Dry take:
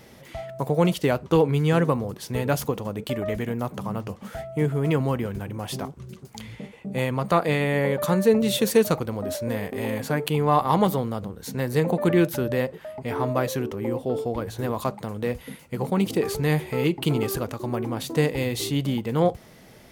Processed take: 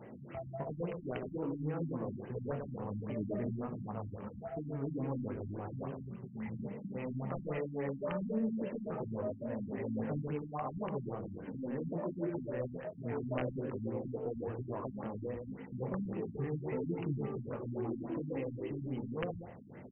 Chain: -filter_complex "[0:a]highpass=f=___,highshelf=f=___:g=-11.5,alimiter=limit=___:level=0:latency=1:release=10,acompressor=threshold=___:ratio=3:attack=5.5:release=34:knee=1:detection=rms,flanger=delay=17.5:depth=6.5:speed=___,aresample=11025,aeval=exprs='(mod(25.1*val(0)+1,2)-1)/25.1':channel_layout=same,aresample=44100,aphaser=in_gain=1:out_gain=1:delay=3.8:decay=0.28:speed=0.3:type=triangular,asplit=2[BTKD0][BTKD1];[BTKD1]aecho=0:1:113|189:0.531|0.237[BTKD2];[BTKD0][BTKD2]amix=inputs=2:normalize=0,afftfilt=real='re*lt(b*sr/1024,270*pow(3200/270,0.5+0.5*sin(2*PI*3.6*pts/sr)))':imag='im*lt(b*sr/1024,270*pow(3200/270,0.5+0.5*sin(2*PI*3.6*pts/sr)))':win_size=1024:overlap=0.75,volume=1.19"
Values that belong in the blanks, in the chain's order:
120, 2300, 0.168, 0.0126, 1.3